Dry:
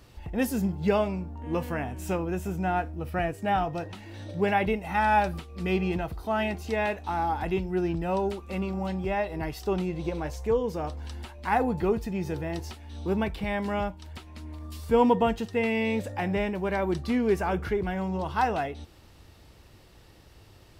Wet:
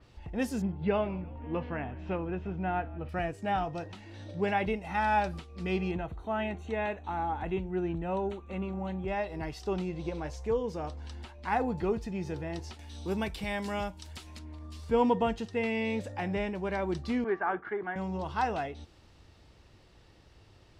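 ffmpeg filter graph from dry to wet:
ffmpeg -i in.wav -filter_complex "[0:a]asettb=1/sr,asplit=3[link_01][link_02][link_03];[link_01]atrim=end=0.624[link_04];[link_02]atrim=start=0.62:end=3.09,asetpts=PTS-STARTPTS,afade=type=in:duration=0.004:curve=qsin,afade=type=out:start_time=2.466:duration=0.004:curve=qsin,lowpass=frequency=3300:width=0.5412,lowpass=frequency=3300:width=1.3066,asplit=6[link_05][link_06][link_07][link_08][link_09][link_10];[link_06]adelay=168,afreqshift=-53,volume=-21dB[link_11];[link_07]adelay=336,afreqshift=-106,volume=-25.2dB[link_12];[link_08]adelay=504,afreqshift=-159,volume=-29.3dB[link_13];[link_09]adelay=672,afreqshift=-212,volume=-33.5dB[link_14];[link_10]adelay=840,afreqshift=-265,volume=-37.6dB[link_15];[link_05][link_11][link_12][link_13][link_14][link_15]amix=inputs=6:normalize=0,atrim=end_sample=108927[link_16];[link_03]atrim=start=3.086[link_17];[link_04][link_16]acrossfade=duration=0.004:curve1=hsin:curve2=qsin[link_18];[link_18][link_17]acrossfade=duration=0.004:curve1=qsin:curve2=hsin,asettb=1/sr,asplit=3[link_19][link_20][link_21];[link_19]atrim=end=5.914[link_22];[link_20]atrim=start=5.91:end=9.08,asetpts=PTS-STARTPTS,afade=type=in:duration=0.004:curve=qsin,afade=type=out:start_time=3.166:duration=0.004:curve=qsin,asuperstop=centerf=5000:order=4:qfactor=2.9,highshelf=frequency=4700:gain=-10.5[link_23];[link_21]atrim=start=9.076[link_24];[link_22][link_23]acrossfade=duration=0.004:curve1=hsin:curve2=qsin[link_25];[link_25][link_24]acrossfade=duration=0.004:curve1=qsin:curve2=hsin,asettb=1/sr,asplit=3[link_26][link_27][link_28];[link_26]atrim=end=12.794[link_29];[link_27]atrim=start=12.79:end=14.39,asetpts=PTS-STARTPTS,afade=type=in:duration=0.004:curve=qsin,afade=type=out:start_time=1.596:duration=0.004:curve=qsin,aemphasis=mode=production:type=75fm,acompressor=mode=upward:threshold=-36dB:ratio=2.5:attack=3.2:release=140:knee=2.83:detection=peak[link_30];[link_28]atrim=start=14.386[link_31];[link_29][link_30]acrossfade=duration=0.004:curve1=hsin:curve2=qsin[link_32];[link_32][link_31]acrossfade=duration=0.004:curve1=qsin:curve2=hsin,asettb=1/sr,asplit=3[link_33][link_34][link_35];[link_33]atrim=end=17.244[link_36];[link_34]atrim=start=17.24:end=17.96,asetpts=PTS-STARTPTS,afade=type=in:duration=0.004:curve=qsin,afade=type=out:start_time=0.716:duration=0.004:curve=qsin,agate=range=-33dB:threshold=-30dB:ratio=3:release=100:detection=peak,highpass=320,equalizer=frequency=340:width_type=q:width=4:gain=3,equalizer=frequency=510:width_type=q:width=4:gain=-7,equalizer=frequency=780:width_type=q:width=4:gain=4,equalizer=frequency=1200:width_type=q:width=4:gain=7,equalizer=frequency=1700:width_type=q:width=4:gain=8,equalizer=frequency=2600:width_type=q:width=4:gain=-8,lowpass=frequency=2700:width=0.5412,lowpass=frequency=2700:width=1.3066[link_37];[link_35]atrim=start=17.956[link_38];[link_36][link_37]acrossfade=duration=0.004:curve1=hsin:curve2=qsin[link_39];[link_39][link_38]acrossfade=duration=0.004:curve1=qsin:curve2=hsin,lowpass=6700,adynamicequalizer=threshold=0.00501:dfrequency=4500:dqfactor=0.7:tfrequency=4500:tqfactor=0.7:attack=5:release=100:ratio=0.375:range=2:mode=boostabove:tftype=highshelf,volume=-4.5dB" out.wav

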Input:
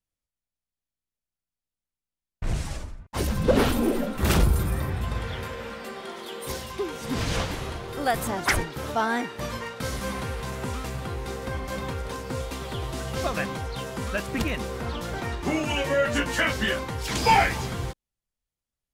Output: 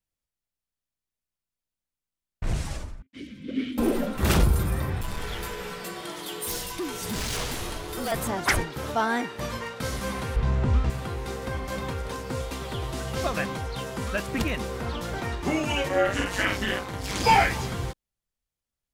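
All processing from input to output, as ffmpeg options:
ffmpeg -i in.wav -filter_complex "[0:a]asettb=1/sr,asplit=3[link_01][link_02][link_03];[link_01]atrim=end=3.024[link_04];[link_02]atrim=start=3.02:end=3.78,asetpts=PTS-STARTPTS,afade=type=in:duration=0.004:curve=qsin,afade=type=out:start_time=0.756:duration=0.004:curve=qsin,acrossover=split=9900[link_05][link_06];[link_06]acompressor=threshold=-48dB:ratio=4:attack=1:release=60[link_07];[link_05][link_07]amix=inputs=2:normalize=0,asplit=3[link_08][link_09][link_10];[link_08]bandpass=frequency=270:width_type=q:width=8,volume=0dB[link_11];[link_09]bandpass=frequency=2290:width_type=q:width=8,volume=-6dB[link_12];[link_10]bandpass=frequency=3010:width_type=q:width=8,volume=-9dB[link_13];[link_11][link_12][link_13]amix=inputs=3:normalize=0,highshelf=frequency=3900:gain=4.5[link_14];[link_03]atrim=start=3.776[link_15];[link_04][link_14]acrossfade=duration=0.004:curve1=hsin:curve2=qsin[link_16];[link_16][link_15]acrossfade=duration=0.004:curve1=qsin:curve2=hsin,asettb=1/sr,asplit=3[link_17][link_18][link_19];[link_17]atrim=end=5.014[link_20];[link_18]atrim=start=5.01:end=8.12,asetpts=PTS-STARTPTS,afade=type=in:duration=0.004:curve=qsin,afade=type=out:start_time=3.106:duration=0.004:curve=qsin,highshelf=frequency=5400:gain=12,asoftclip=type=hard:threshold=-27dB,afreqshift=-42[link_21];[link_19]atrim=start=8.116[link_22];[link_20][link_21]acrossfade=duration=0.004:curve1=hsin:curve2=qsin[link_23];[link_23][link_22]acrossfade=duration=0.004:curve1=qsin:curve2=hsin,asettb=1/sr,asplit=3[link_24][link_25][link_26];[link_24]atrim=end=10.364[link_27];[link_25]atrim=start=10.36:end=10.9,asetpts=PTS-STARTPTS,afade=type=in:duration=0.004:curve=qsin,afade=type=out:start_time=0.536:duration=0.004:curve=qsin,acrossover=split=8000[link_28][link_29];[link_29]acompressor=threshold=-56dB:ratio=4:attack=1:release=60[link_30];[link_28][link_30]amix=inputs=2:normalize=0,aemphasis=mode=reproduction:type=bsi,asplit=2[link_31][link_32];[link_32]adelay=29,volume=-12dB[link_33];[link_31][link_33]amix=inputs=2:normalize=0,atrim=end_sample=23814[link_34];[link_26]atrim=start=10.896[link_35];[link_27][link_34]acrossfade=duration=0.004:curve1=hsin:curve2=qsin[link_36];[link_36][link_35]acrossfade=duration=0.004:curve1=qsin:curve2=hsin,asettb=1/sr,asplit=3[link_37][link_38][link_39];[link_37]atrim=end=15.884[link_40];[link_38]atrim=start=15.88:end=17.24,asetpts=PTS-STARTPTS,afade=type=in:duration=0.004:curve=qsin,afade=type=out:start_time=1.356:duration=0.004:curve=qsin,tremolo=f=200:d=0.857,asplit=2[link_41][link_42];[link_42]adelay=50,volume=-2dB[link_43];[link_41][link_43]amix=inputs=2:normalize=0,atrim=end_sample=59976[link_44];[link_39]atrim=start=17.236[link_45];[link_40][link_44]acrossfade=duration=0.004:curve1=hsin:curve2=qsin[link_46];[link_46][link_45]acrossfade=duration=0.004:curve1=qsin:curve2=hsin" out.wav

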